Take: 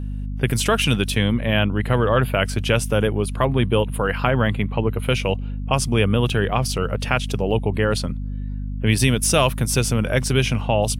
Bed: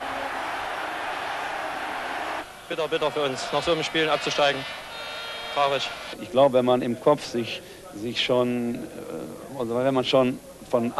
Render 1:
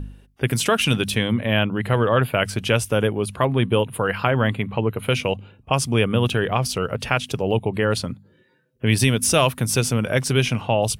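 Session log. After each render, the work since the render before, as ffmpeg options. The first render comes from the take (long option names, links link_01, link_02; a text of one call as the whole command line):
ffmpeg -i in.wav -af "bandreject=frequency=50:width_type=h:width=4,bandreject=frequency=100:width_type=h:width=4,bandreject=frequency=150:width_type=h:width=4,bandreject=frequency=200:width_type=h:width=4,bandreject=frequency=250:width_type=h:width=4" out.wav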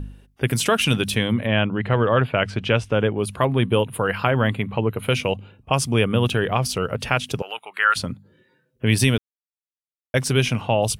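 ffmpeg -i in.wav -filter_complex "[0:a]asettb=1/sr,asplit=3[link_01][link_02][link_03];[link_01]atrim=end=1.474[link_04];[link_02]atrim=start=1.47:end=3.18,asetpts=PTS-STARTPTS,afade=type=in:duration=0.004:curve=qsin,afade=type=out:start_time=1.706:duration=0.004:curve=qsin,lowpass=3700[link_05];[link_03]atrim=start=3.176[link_06];[link_04][link_05]acrossfade=duration=0.004:curve1=hsin:curve2=qsin[link_07];[link_07][link_06]acrossfade=duration=0.004:curve1=qsin:curve2=hsin,asettb=1/sr,asplit=3[link_08][link_09][link_10];[link_08]atrim=end=7.424[link_11];[link_09]atrim=start=7.42:end=7.96,asetpts=PTS-STARTPTS,afade=type=in:duration=0.004:curve=qsin,afade=type=out:start_time=0.536:duration=0.004:curve=qsin,highpass=frequency=1400:width_type=q:width=4[link_12];[link_10]atrim=start=7.956[link_13];[link_11][link_12]acrossfade=duration=0.004:curve1=hsin:curve2=qsin[link_14];[link_14][link_13]acrossfade=duration=0.004:curve1=qsin:curve2=hsin,asplit=3[link_15][link_16][link_17];[link_15]atrim=end=9.18,asetpts=PTS-STARTPTS,afade=type=out:start_time=9.176:duration=0.004:curve=hsin[link_18];[link_16]atrim=start=9.18:end=10.14,asetpts=PTS-STARTPTS,volume=0[link_19];[link_17]atrim=start=10.14,asetpts=PTS-STARTPTS,afade=type=in:duration=0.004:curve=hsin[link_20];[link_18][link_19][link_20]concat=n=3:v=0:a=1" out.wav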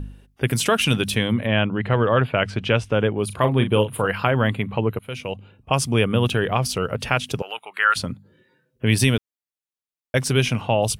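ffmpeg -i in.wav -filter_complex "[0:a]asettb=1/sr,asplit=3[link_01][link_02][link_03];[link_01]atrim=end=3.264[link_04];[link_02]atrim=start=3.26:end=4.07,asetpts=PTS-STARTPTS,afade=type=in:duration=0.004:curve=qsin,afade=type=out:start_time=0.806:duration=0.004:curve=qsin,asplit=2[link_05][link_06];[link_06]adelay=38,volume=-9.5dB[link_07];[link_05][link_07]amix=inputs=2:normalize=0,atrim=end_sample=35721[link_08];[link_03]atrim=start=4.066[link_09];[link_04][link_08]acrossfade=duration=0.004:curve1=hsin:curve2=qsin[link_10];[link_10][link_09]acrossfade=duration=0.004:curve1=qsin:curve2=hsin,asplit=2[link_11][link_12];[link_11]atrim=end=4.99,asetpts=PTS-STARTPTS,afade=type=out:start_time=4.986:duration=0.004:curve=hsin:silence=0.125893[link_13];[link_12]atrim=start=4.99,asetpts=PTS-STARTPTS,afade=type=in:duration=0.74:silence=0.125893[link_14];[link_13][link_14]concat=n=2:v=0:a=1" out.wav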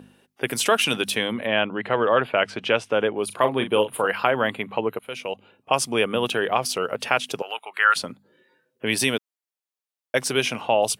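ffmpeg -i in.wav -af "highpass=320,equalizer=frequency=770:width_type=o:width=0.77:gain=2" out.wav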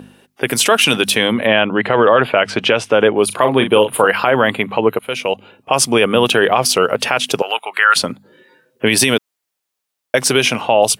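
ffmpeg -i in.wav -af "dynaudnorm=framelen=340:gausssize=9:maxgain=11.5dB,alimiter=level_in=9.5dB:limit=-1dB:release=50:level=0:latency=1" out.wav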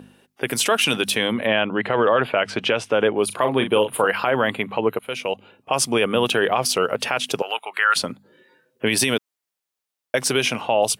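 ffmpeg -i in.wav -af "volume=-6.5dB" out.wav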